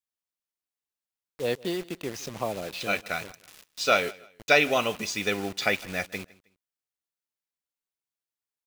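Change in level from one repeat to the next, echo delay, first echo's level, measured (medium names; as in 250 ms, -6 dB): -10.5 dB, 158 ms, -22.0 dB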